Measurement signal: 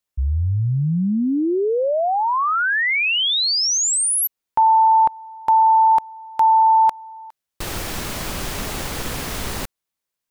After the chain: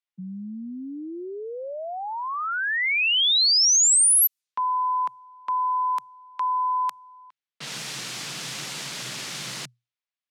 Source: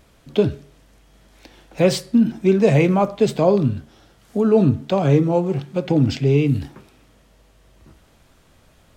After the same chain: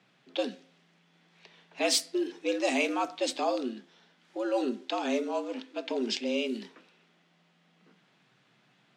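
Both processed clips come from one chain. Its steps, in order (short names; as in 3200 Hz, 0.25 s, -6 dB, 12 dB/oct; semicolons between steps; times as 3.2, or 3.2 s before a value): tilt shelf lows -9 dB, about 1500 Hz; low-pass opened by the level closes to 2500 Hz, open at -14.5 dBFS; frequency shift +120 Hz; gain -6.5 dB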